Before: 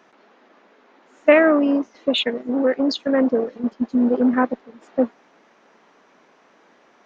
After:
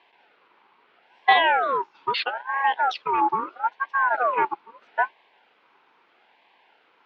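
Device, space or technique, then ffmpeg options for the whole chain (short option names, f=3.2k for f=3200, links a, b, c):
voice changer toy: -af "aeval=exprs='val(0)*sin(2*PI*980*n/s+980*0.4/0.77*sin(2*PI*0.77*n/s))':c=same,highpass=480,equalizer=f=590:t=q:w=4:g=-5,equalizer=f=880:t=q:w=4:g=5,equalizer=f=1.2k:t=q:w=4:g=-3,equalizer=f=1.8k:t=q:w=4:g=-6,lowpass=f=4k:w=0.5412,lowpass=f=4k:w=1.3066"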